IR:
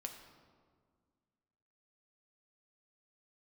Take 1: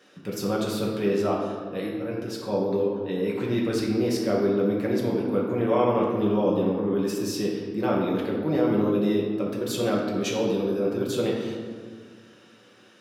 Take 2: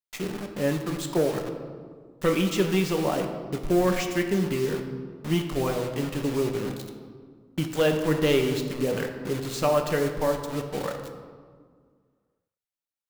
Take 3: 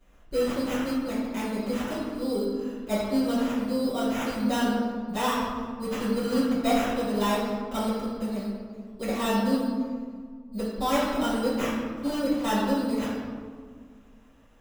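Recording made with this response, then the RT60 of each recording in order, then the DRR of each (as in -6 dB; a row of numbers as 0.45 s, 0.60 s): 2; 1.8 s, 1.8 s, 1.8 s; -4.0 dB, 3.5 dB, -13.0 dB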